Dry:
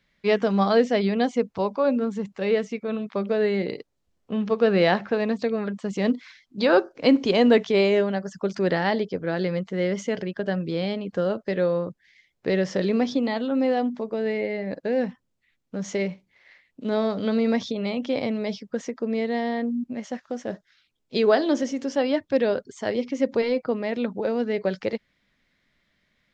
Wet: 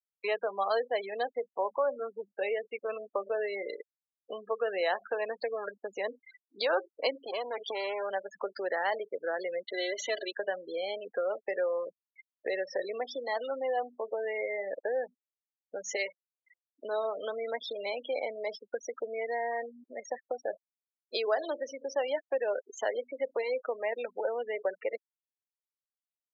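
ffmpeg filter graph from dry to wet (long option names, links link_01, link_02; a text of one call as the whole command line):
ffmpeg -i in.wav -filter_complex "[0:a]asettb=1/sr,asplit=3[link_01][link_02][link_03];[link_01]atrim=end=7.184[link_04];[link_02]atrim=start=7.18:end=8.11,asetpts=PTS-STARTPTS,afade=type=in:duration=0.004:curve=qsin,afade=type=out:start_time=0.926:duration=0.004:curve=qsin,aeval=exprs='clip(val(0),-1,0.0299)':channel_layout=same,acompressor=threshold=-21dB:ratio=16:attack=3.2:release=140:knee=1:detection=peak[link_05];[link_03]atrim=start=8.106[link_06];[link_04][link_05]acrossfade=duration=0.004:curve1=hsin:curve2=qsin[link_07];[link_07][link_06]acrossfade=duration=0.004:curve1=qsin:curve2=hsin,asettb=1/sr,asplit=3[link_08][link_09][link_10];[link_08]atrim=end=9.634[link_11];[link_09]atrim=start=9.63:end=10.32,asetpts=PTS-STARTPTS,afade=type=in:duration=0.004:curve=qsin,afade=type=out:start_time=0.686:duration=0.004:curve=qsin,equalizer=frequency=3900:width_type=o:width=0.44:gain=14,bandreject=frequency=50:width_type=h:width=6,bandreject=frequency=100:width_type=h:width=6,bandreject=frequency=150:width_type=h:width=6,bandreject=frequency=200:width_type=h:width=6,bandreject=frequency=250:width_type=h:width=6,bandreject=frequency=300:width_type=h:width=6,bandreject=frequency=350:width_type=h:width=6,aecho=1:1:3:0.87,atrim=end_sample=30429[link_12];[link_10]atrim=start=10.316[link_13];[link_11][link_12]acrossfade=duration=0.004:curve1=hsin:curve2=qsin[link_14];[link_14][link_13]acrossfade=duration=0.004:curve1=qsin:curve2=hsin,asettb=1/sr,asplit=3[link_15][link_16][link_17];[link_15]atrim=end=15.964[link_18];[link_16]atrim=start=15.96:end=16.84,asetpts=PTS-STARTPTS,afade=type=in:duration=0.004:curve=qsin,afade=type=out:start_time=0.876:duration=0.004:curve=qsin,aemphasis=mode=production:type=riaa,acrusher=bits=7:dc=4:mix=0:aa=0.000001[link_19];[link_17]atrim=start=16.836[link_20];[link_18][link_19]acrossfade=duration=0.004:curve1=hsin:curve2=qsin[link_21];[link_21][link_20]acrossfade=duration=0.004:curve1=qsin:curve2=hsin,acompressor=threshold=-35dB:ratio=3,afftfilt=real='re*gte(hypot(re,im),0.0126)':imag='im*gte(hypot(re,im),0.0126)':win_size=1024:overlap=0.75,highpass=frequency=500:width=0.5412,highpass=frequency=500:width=1.3066,volume=7dB" out.wav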